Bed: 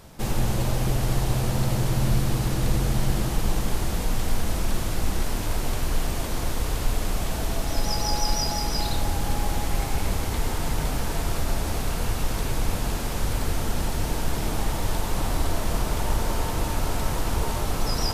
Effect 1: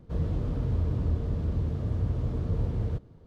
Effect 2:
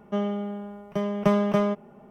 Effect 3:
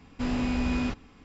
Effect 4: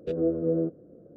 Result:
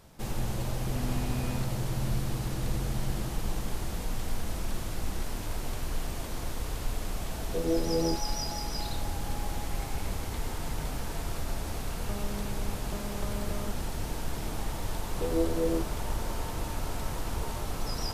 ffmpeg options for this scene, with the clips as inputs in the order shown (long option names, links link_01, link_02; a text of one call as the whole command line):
ffmpeg -i bed.wav -i cue0.wav -i cue1.wav -i cue2.wav -i cue3.wav -filter_complex "[4:a]asplit=2[link_01][link_02];[0:a]volume=-8dB[link_03];[2:a]acompressor=threshold=-33dB:ratio=6:attack=3.2:release=140:knee=1:detection=peak[link_04];[link_02]equalizer=frequency=160:width_type=o:width=0.77:gain=-7[link_05];[3:a]atrim=end=1.24,asetpts=PTS-STARTPTS,volume=-10dB,afade=type=in:duration=0.004:curve=hsin,afade=type=out:start_time=1.236:duration=0.004:curve=hsin,adelay=720[link_06];[link_01]atrim=end=1.16,asetpts=PTS-STARTPTS,volume=-3dB,afade=type=in:duration=0.004:curve=hsin,afade=type=out:start_time=1.156:duration=0.004:curve=hsin,adelay=7470[link_07];[link_04]atrim=end=2.1,asetpts=PTS-STARTPTS,volume=-5dB,afade=type=in:duration=0.004:curve=hsin,afade=type=out:start_time=2.096:duration=0.004:curve=hsin,adelay=11970[link_08];[link_05]atrim=end=1.16,asetpts=PTS-STARTPTS,volume=-2.5dB,afade=type=in:duration=0.004:curve=hsin,afade=type=out:start_time=1.156:duration=0.004:curve=hsin,adelay=15140[link_09];[link_03][link_06][link_07][link_08][link_09]amix=inputs=5:normalize=0" out.wav